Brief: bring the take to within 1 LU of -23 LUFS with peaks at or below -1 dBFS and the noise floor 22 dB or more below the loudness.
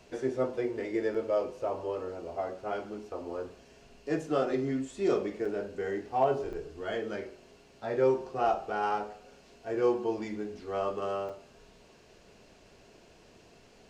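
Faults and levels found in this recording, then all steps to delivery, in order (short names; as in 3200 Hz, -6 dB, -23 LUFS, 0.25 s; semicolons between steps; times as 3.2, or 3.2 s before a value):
dropouts 4; longest dropout 5.0 ms; loudness -32.5 LUFS; peak -14.5 dBFS; loudness target -23.0 LUFS
-> interpolate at 1.14/5.45/6.53/11.29, 5 ms; gain +9.5 dB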